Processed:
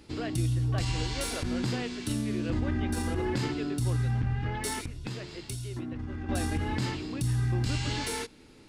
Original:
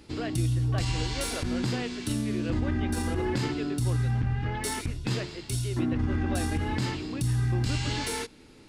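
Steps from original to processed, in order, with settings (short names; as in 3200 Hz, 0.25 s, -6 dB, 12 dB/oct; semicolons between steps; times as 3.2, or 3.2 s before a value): 4.85–6.29 compressor 6:1, threshold -32 dBFS, peak gain reduction 9 dB; gain -1.5 dB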